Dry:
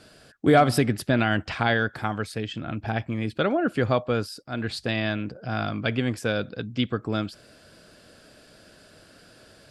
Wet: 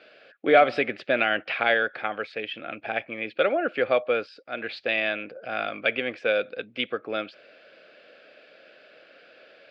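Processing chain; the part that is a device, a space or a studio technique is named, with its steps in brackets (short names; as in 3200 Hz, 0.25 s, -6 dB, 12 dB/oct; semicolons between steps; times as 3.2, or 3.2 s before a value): phone earpiece (speaker cabinet 490–3500 Hz, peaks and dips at 530 Hz +7 dB, 970 Hz -10 dB, 2400 Hz +8 dB); gain +1.5 dB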